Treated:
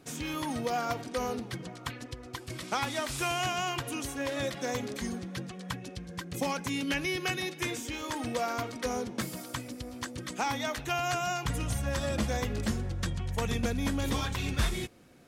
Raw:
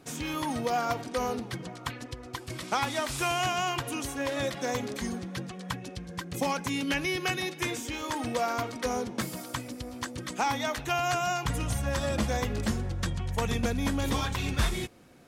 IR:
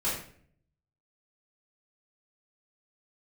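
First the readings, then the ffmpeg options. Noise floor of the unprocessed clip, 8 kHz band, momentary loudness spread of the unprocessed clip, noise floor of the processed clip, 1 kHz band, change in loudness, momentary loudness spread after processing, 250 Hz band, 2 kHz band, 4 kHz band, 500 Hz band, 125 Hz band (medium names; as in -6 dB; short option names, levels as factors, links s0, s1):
-45 dBFS, -1.5 dB, 9 LU, -47 dBFS, -3.5 dB, -2.0 dB, 9 LU, -1.5 dB, -2.0 dB, -1.5 dB, -2.5 dB, -1.5 dB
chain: -af "equalizer=f=910:w=1.5:g=-2.5,volume=0.841"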